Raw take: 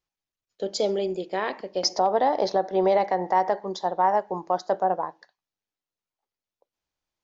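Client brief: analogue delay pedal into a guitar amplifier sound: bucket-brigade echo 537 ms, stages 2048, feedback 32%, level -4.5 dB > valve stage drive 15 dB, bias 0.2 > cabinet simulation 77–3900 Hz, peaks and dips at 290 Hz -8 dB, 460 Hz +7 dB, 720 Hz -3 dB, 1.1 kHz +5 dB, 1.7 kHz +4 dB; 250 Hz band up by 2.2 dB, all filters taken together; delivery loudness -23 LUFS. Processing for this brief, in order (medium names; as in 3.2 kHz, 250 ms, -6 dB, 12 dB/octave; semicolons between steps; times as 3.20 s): peaking EQ 250 Hz +5 dB; bucket-brigade echo 537 ms, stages 2048, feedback 32%, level -4.5 dB; valve stage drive 15 dB, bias 0.2; cabinet simulation 77–3900 Hz, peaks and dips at 290 Hz -8 dB, 460 Hz +7 dB, 720 Hz -3 dB, 1.1 kHz +5 dB, 1.7 kHz +4 dB; trim +2 dB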